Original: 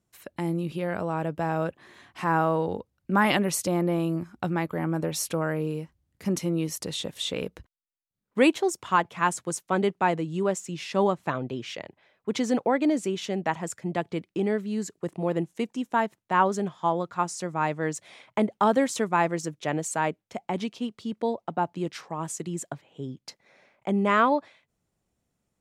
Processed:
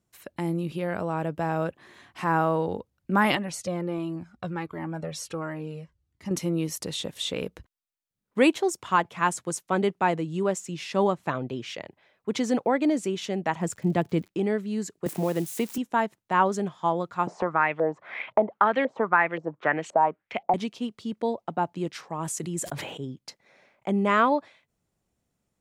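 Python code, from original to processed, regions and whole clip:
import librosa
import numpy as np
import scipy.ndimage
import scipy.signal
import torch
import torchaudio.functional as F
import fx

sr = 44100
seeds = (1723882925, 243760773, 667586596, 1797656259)

y = fx.chain(x, sr, fx.lowpass(hz=7900.0, slope=12),
    fx.comb_cascade(direction='falling', hz=1.4), at=(3.35, 6.31))
y = fx.low_shelf(y, sr, hz=360.0, db=9.0, at=(13.6, 14.27), fade=0.02)
y = fx.dmg_crackle(y, sr, seeds[0], per_s=130.0, level_db=-42.0, at=(13.6, 14.27), fade=0.02)
y = fx.chain(y, sr, fx.crossing_spikes(level_db=-32.0),
    fx.band_squash(depth_pct=70), at=(15.06, 15.78))
y = fx.chain(y, sr, fx.low_shelf(hz=310.0, db=-10.0),
    fx.filter_lfo_lowpass(shape='saw_up', hz=1.9, low_hz=550.0, high_hz=3400.0, q=4.0),
    fx.band_squash(depth_pct=70), at=(17.27, 20.54))
y = fx.chain(y, sr, fx.peak_eq(hz=11000.0, db=6.0, octaves=0.63),
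    fx.sustainer(db_per_s=38.0), at=(22.12, 23.05))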